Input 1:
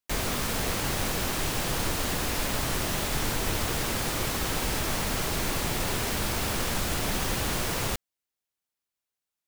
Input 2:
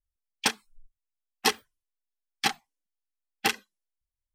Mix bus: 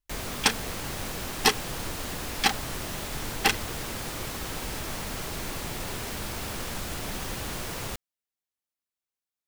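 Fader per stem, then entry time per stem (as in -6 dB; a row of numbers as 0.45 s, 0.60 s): -5.5 dB, +2.5 dB; 0.00 s, 0.00 s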